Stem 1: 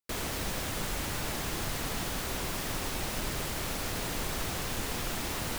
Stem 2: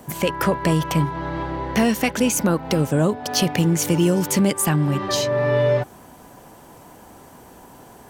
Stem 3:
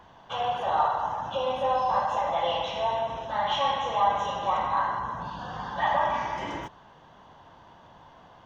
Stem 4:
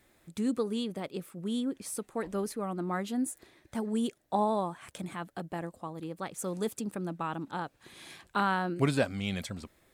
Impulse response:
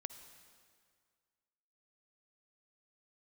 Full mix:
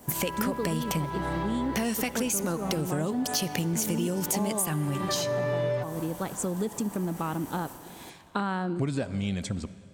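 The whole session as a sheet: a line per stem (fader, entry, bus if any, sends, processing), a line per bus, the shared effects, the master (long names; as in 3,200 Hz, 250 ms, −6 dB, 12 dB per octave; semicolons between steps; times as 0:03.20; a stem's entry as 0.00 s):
−15.0 dB, 0.00 s, bus A, no send, no processing
+1.0 dB, 0.00 s, bus B, send −9 dB, high-shelf EQ 5,600 Hz +8.5 dB
−6.5 dB, 0.80 s, bus A, no send, downward compressor, threshold −31 dBFS, peak gain reduction 12.5 dB
+1.5 dB, 0.00 s, bus B, send −5 dB, low-pass with resonance 7,800 Hz, resonance Q 1.9; low-shelf EQ 500 Hz +9 dB
bus A: 0.0 dB, brickwall limiter −38.5 dBFS, peak gain reduction 11 dB
bus B: 0.0 dB, downward expander −32 dBFS; downward compressor 2 to 1, threshold −25 dBFS, peak gain reduction 8.5 dB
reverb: on, RT60 2.0 s, pre-delay 48 ms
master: downward compressor 3 to 1, threshold −28 dBFS, peak gain reduction 10.5 dB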